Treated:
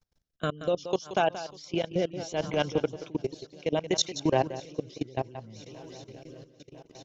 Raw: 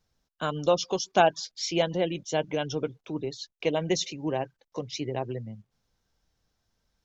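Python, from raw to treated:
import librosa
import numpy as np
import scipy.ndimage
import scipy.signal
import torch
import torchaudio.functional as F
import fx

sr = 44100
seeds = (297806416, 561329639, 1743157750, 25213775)

p1 = fx.over_compress(x, sr, threshold_db=-28.0, ratio=-0.5)
p2 = x + (p1 * 10.0 ** (0.0 / 20.0))
p3 = fx.echo_swing(p2, sr, ms=999, ratio=1.5, feedback_pct=66, wet_db=-19.5)
p4 = fx.level_steps(p3, sr, step_db=22)
p5 = fx.transient(p4, sr, attack_db=-7, sustain_db=9, at=(2.15, 2.69), fade=0.02)
p6 = p5 + fx.echo_single(p5, sr, ms=178, db=-12.5, dry=0)
y = fx.rotary(p6, sr, hz=0.65)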